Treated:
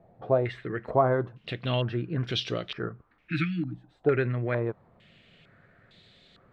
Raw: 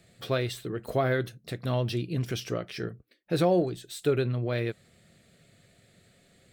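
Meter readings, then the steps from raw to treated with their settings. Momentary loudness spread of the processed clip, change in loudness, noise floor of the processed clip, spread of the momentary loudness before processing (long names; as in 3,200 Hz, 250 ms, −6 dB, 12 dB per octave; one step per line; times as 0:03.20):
11 LU, +0.5 dB, −65 dBFS, 11 LU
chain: time-frequency box erased 0:03.09–0:03.95, 330–1,200 Hz
background noise pink −70 dBFS
low-pass on a step sequencer 2.2 Hz 790–3,700 Hz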